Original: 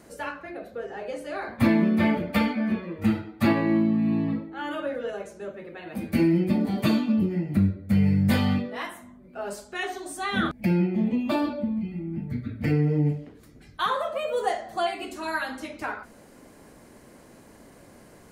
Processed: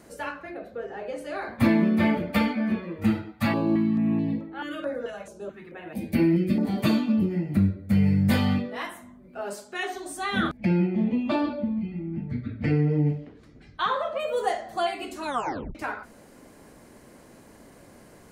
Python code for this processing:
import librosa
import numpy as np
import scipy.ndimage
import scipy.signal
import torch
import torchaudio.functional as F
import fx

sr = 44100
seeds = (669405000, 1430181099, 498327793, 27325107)

y = fx.high_shelf(x, sr, hz=4600.0, db=-8.0, at=(0.54, 1.18))
y = fx.filter_held_notch(y, sr, hz=4.6, low_hz=370.0, high_hz=6900.0, at=(3.32, 6.63))
y = fx.highpass(y, sr, hz=150.0, slope=12, at=(9.42, 9.95))
y = fx.lowpass(y, sr, hz=4900.0, slope=12, at=(10.57, 14.2))
y = fx.edit(y, sr, fx.tape_stop(start_s=15.25, length_s=0.5), tone=tone)